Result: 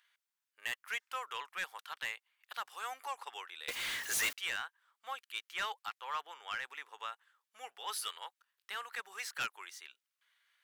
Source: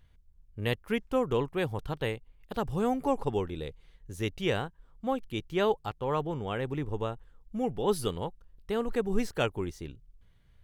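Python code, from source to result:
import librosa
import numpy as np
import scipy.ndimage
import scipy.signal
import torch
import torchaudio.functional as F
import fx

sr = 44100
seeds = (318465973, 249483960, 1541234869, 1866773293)

y = fx.ladder_highpass(x, sr, hz=1100.0, resonance_pct=25)
y = fx.power_curve(y, sr, exponent=0.35, at=(3.68, 4.33))
y = 10.0 ** (-36.5 / 20.0) * np.tanh(y / 10.0 ** (-36.5 / 20.0))
y = y * 10.0 ** (7.5 / 20.0)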